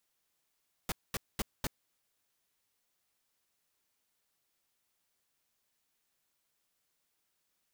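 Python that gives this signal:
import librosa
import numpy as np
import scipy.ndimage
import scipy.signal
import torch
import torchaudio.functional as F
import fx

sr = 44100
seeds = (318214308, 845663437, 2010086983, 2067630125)

y = fx.noise_burst(sr, seeds[0], colour='pink', on_s=0.03, off_s=0.22, bursts=4, level_db=-33.5)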